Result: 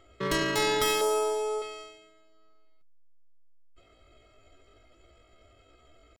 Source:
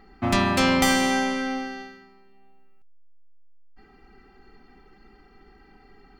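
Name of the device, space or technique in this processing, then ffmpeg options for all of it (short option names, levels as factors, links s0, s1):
chipmunk voice: -filter_complex "[0:a]asetrate=72056,aresample=44100,atempo=0.612027,asettb=1/sr,asplit=3[s0][s1][s2];[s0]atrim=end=1.014[s3];[s1]atrim=start=1.01:end=1.62,asetpts=PTS-STARTPTS,afade=t=in:d=0.004:c=qsin,afade=t=out:st=0.606:d=0.004:c=qsin,equalizer=f=125:t=o:w=1:g=-9,equalizer=f=250:t=o:w=1:g=-4,equalizer=f=500:t=o:w=1:g=8,equalizer=f=1000:t=o:w=1:g=4,equalizer=f=2000:t=o:w=1:g=-11,equalizer=f=4000:t=o:w=1:g=-8,equalizer=f=8000:t=o:w=1:g=5[s4];[s2]atrim=start=1.616[s5];[s3][s4]acrossfade=d=0.004:c1=hsin:c2=qsin[s6];[s6][s5]acrossfade=d=0.004:c1=qsin:c2=hsin,volume=0.501"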